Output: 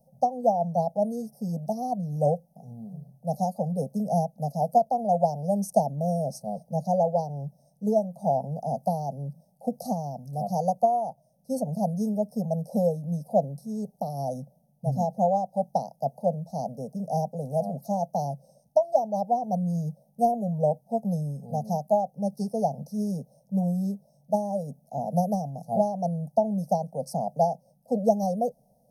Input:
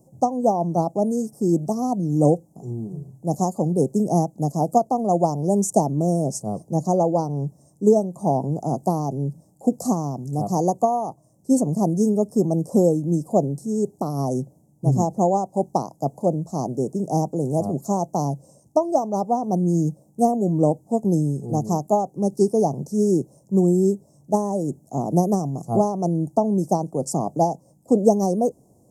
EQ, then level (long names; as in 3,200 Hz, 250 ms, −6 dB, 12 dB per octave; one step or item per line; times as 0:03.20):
phaser with its sweep stopped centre 370 Hz, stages 6
phaser with its sweep stopped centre 1,600 Hz, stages 8
−1.0 dB